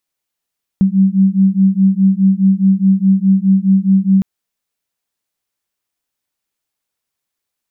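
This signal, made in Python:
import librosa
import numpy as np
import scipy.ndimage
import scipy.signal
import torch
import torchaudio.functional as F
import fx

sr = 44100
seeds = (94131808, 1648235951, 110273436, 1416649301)

y = fx.two_tone_beats(sr, length_s=3.41, hz=190.0, beat_hz=4.8, level_db=-11.5)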